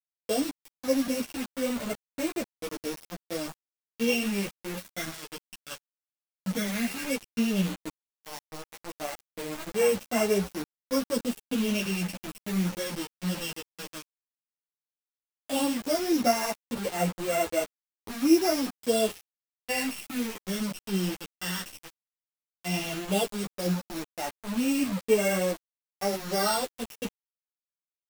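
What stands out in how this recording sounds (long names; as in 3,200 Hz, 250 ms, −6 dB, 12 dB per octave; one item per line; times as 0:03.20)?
a buzz of ramps at a fixed pitch in blocks of 16 samples
phaser sweep stages 12, 0.13 Hz, lowest notch 720–4,300 Hz
a quantiser's noise floor 6 bits, dither none
a shimmering, thickened sound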